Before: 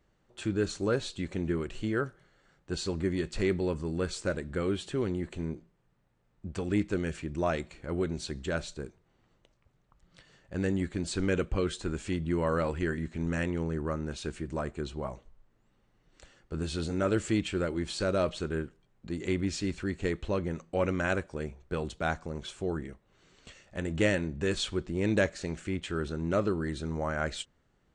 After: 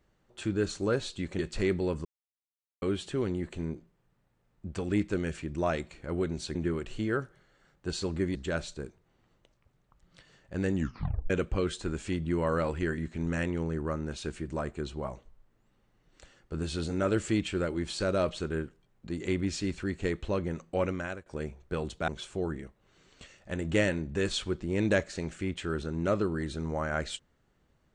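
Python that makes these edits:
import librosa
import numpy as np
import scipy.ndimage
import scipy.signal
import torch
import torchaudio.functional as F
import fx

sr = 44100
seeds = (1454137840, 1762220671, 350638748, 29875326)

y = fx.edit(x, sr, fx.move(start_s=1.39, length_s=1.8, to_s=8.35),
    fx.silence(start_s=3.85, length_s=0.77),
    fx.tape_stop(start_s=10.75, length_s=0.55),
    fx.fade_out_to(start_s=20.78, length_s=0.48, floor_db=-21.0),
    fx.cut(start_s=22.08, length_s=0.26), tone=tone)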